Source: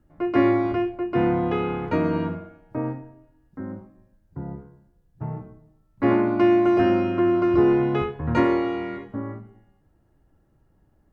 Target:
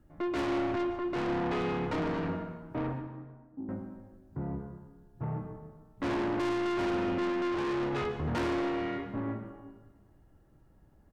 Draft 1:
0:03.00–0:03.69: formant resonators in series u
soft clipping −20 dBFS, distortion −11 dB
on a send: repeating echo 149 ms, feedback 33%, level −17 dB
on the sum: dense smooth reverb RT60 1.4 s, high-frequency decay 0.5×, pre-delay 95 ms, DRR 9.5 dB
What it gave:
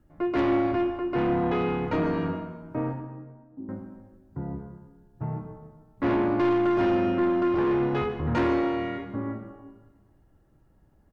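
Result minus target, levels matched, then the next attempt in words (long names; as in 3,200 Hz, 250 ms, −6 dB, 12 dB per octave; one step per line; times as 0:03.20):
soft clipping: distortion −6 dB
0:03.00–0:03.69: formant resonators in series u
soft clipping −29.5 dBFS, distortion −5 dB
on a send: repeating echo 149 ms, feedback 33%, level −17 dB
on the sum: dense smooth reverb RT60 1.4 s, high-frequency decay 0.5×, pre-delay 95 ms, DRR 9.5 dB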